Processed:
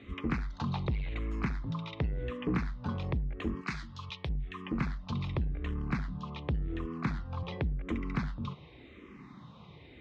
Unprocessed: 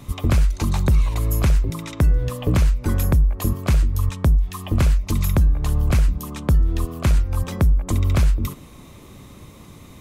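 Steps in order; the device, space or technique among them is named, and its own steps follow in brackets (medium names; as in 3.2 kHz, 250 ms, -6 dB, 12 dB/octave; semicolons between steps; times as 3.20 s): 3.61–4.29 s: tilt shelf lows -9.5 dB, about 1.5 kHz; barber-pole phaser into a guitar amplifier (barber-pole phaser -0.9 Hz; saturation -17 dBFS, distortion -13 dB; cabinet simulation 79–3700 Hz, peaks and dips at 97 Hz -9 dB, 600 Hz -6 dB, 2 kHz +3 dB); trim -3.5 dB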